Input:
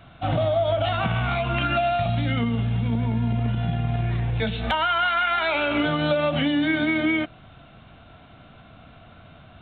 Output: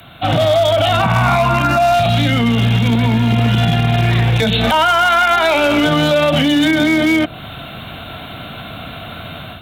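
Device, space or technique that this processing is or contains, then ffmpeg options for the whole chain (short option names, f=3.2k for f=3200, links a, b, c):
FM broadcast chain: -filter_complex "[0:a]highpass=f=78:p=1,dynaudnorm=f=280:g=3:m=10dB,acrossover=split=90|1100[a][b][c];[a]acompressor=threshold=-35dB:ratio=4[d];[b]acompressor=threshold=-17dB:ratio=4[e];[c]acompressor=threshold=-29dB:ratio=4[f];[d][e][f]amix=inputs=3:normalize=0,aemphasis=mode=production:type=50fm,alimiter=limit=-14dB:level=0:latency=1:release=40,asoftclip=type=hard:threshold=-16.5dB,lowpass=f=15k:w=0.5412,lowpass=f=15k:w=1.3066,aemphasis=mode=production:type=50fm,asettb=1/sr,asplit=3[g][h][i];[g]atrim=end=1.034[j];[h]atrim=start=1.03:end=1.94,asetpts=PTS-STARTPTS,afade=t=in:d=0.004:c=qsin,afade=t=out:st=0.906:d=0.004:c=qsin,equalizer=f=400:t=o:w=0.33:g=-11,equalizer=f=1k:t=o:w=0.33:g=10,equalizer=f=3.15k:t=o:w=0.33:g=-9[k];[i]atrim=start=1.936[l];[j][k]acrossfade=d=0.004:c1=hsin:c2=qsin[m];[m][l]acrossfade=d=0.004:c1=qsin:c2=hsin,volume=8.5dB"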